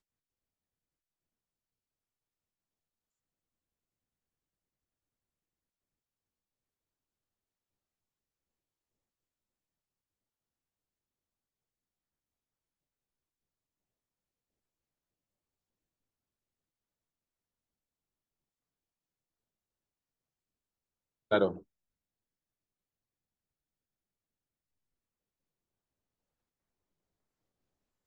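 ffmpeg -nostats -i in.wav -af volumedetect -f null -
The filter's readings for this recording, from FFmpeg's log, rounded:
mean_volume: -47.5 dB
max_volume: -13.6 dB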